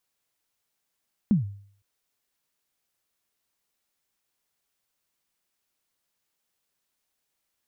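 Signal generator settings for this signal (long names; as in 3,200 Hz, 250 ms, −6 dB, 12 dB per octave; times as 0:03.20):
synth kick length 0.51 s, from 230 Hz, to 100 Hz, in 133 ms, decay 0.55 s, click off, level −14 dB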